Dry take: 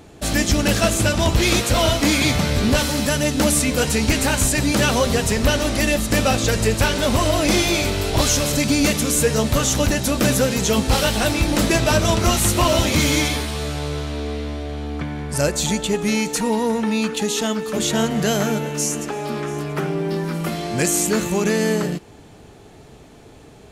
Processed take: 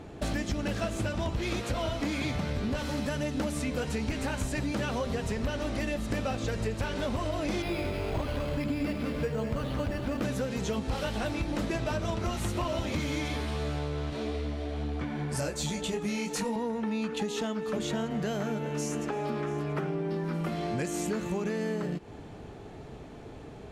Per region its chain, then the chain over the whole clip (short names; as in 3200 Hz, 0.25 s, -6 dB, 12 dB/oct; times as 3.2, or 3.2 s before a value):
7.62–10.22 split-band echo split 1000 Hz, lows 83 ms, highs 0.195 s, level -8 dB + careless resampling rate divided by 6×, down filtered, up hold
14.1–16.56 high shelf 3800 Hz +8.5 dB + detuned doubles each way 30 cents
whole clip: LPF 2100 Hz 6 dB/oct; compressor, threshold -29 dBFS